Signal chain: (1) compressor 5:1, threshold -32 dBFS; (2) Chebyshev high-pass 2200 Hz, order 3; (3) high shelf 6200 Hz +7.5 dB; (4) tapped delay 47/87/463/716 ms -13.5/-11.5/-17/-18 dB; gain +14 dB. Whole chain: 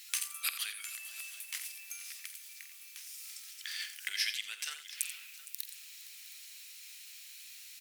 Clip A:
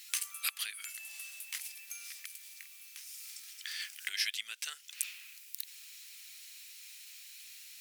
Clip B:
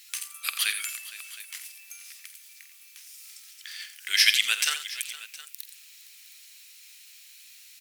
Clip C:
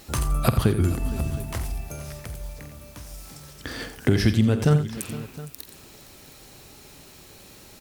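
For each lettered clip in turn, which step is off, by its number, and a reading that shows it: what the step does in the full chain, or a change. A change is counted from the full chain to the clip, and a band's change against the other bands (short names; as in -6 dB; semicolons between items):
4, echo-to-direct -8.0 dB to none; 1, momentary loudness spread change +10 LU; 2, 1 kHz band +19.5 dB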